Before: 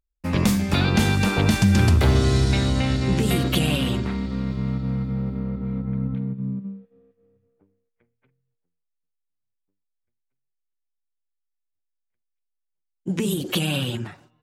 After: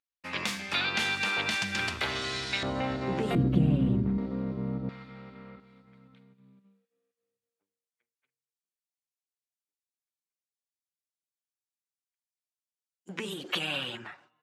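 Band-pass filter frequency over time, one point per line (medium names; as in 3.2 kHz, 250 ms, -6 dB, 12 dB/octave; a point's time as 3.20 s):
band-pass filter, Q 0.89
2.5 kHz
from 2.63 s 810 Hz
from 3.35 s 180 Hz
from 4.18 s 470 Hz
from 4.89 s 2.4 kHz
from 5.60 s 7.1 kHz
from 13.09 s 1.6 kHz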